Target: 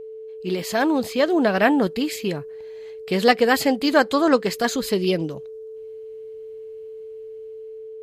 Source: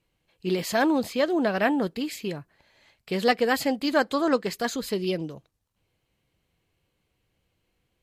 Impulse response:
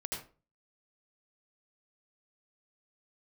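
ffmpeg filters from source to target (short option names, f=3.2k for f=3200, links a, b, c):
-af "dynaudnorm=f=440:g=5:m=7dB,aeval=exprs='val(0)+0.02*sin(2*PI*440*n/s)':c=same"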